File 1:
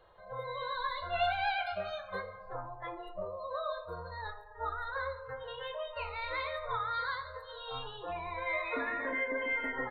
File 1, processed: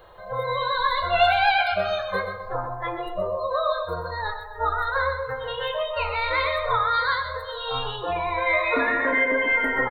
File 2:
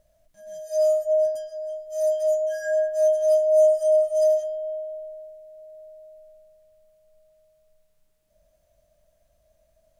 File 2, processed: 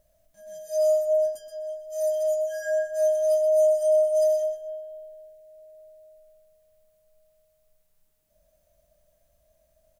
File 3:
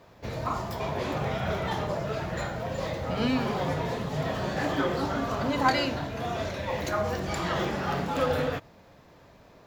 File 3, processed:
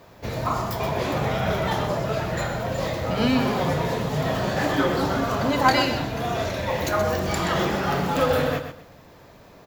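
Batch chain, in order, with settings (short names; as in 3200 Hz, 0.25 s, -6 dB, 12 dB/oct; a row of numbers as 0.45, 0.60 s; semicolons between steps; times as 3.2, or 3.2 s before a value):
high shelf 11000 Hz +10 dB; feedback echo 0.126 s, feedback 23%, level -9 dB; match loudness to -24 LUFS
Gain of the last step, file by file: +12.0, -2.0, +5.0 dB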